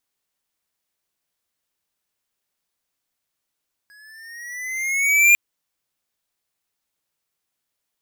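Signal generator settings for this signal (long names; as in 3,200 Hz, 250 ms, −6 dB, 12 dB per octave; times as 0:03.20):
pitch glide with a swell square, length 1.45 s, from 1,660 Hz, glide +6.5 semitones, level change +38 dB, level −11 dB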